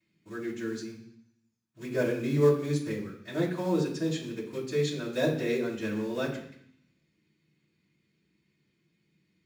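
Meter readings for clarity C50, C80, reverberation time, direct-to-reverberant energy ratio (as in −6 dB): 6.5 dB, 9.5 dB, 0.65 s, −12.0 dB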